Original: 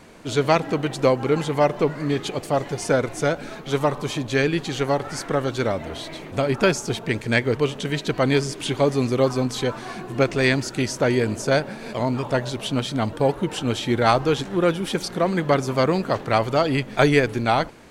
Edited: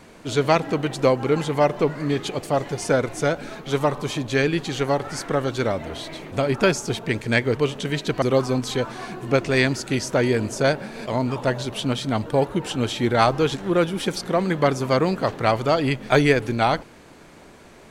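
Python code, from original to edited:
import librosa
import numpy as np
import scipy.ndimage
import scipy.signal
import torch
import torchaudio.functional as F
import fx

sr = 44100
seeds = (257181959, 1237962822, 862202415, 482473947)

y = fx.edit(x, sr, fx.cut(start_s=8.22, length_s=0.87), tone=tone)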